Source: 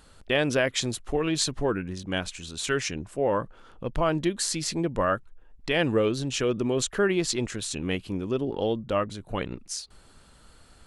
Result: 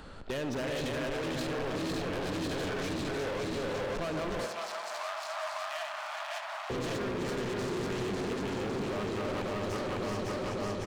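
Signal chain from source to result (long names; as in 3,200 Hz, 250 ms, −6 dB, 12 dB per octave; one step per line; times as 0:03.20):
feedback delay that plays each chunk backwards 276 ms, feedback 81%, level −2.5 dB
head-to-tape spacing loss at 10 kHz 21 dB
single-tap delay 376 ms −6.5 dB
brickwall limiter −21.5 dBFS, peak gain reduction 10 dB
hard clipping −35.5 dBFS, distortion −6 dB
0:04.46–0:06.70: Chebyshev high-pass filter 600 Hz, order 10
tape delay 75 ms, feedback 81%, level −9.5 dB, low-pass 4,600 Hz
multiband upward and downward compressor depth 40%
level +2.5 dB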